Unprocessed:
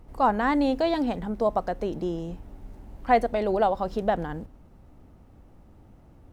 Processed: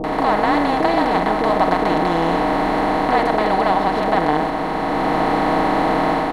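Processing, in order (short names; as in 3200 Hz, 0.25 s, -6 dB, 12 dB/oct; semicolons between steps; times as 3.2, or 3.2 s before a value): per-bin compression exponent 0.2; comb 6.4 ms, depth 50%; AGC gain up to 6 dB; bands offset in time lows, highs 40 ms, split 550 Hz; buzz 50 Hz, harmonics 25, -49 dBFS -1 dB/oct; gain -1 dB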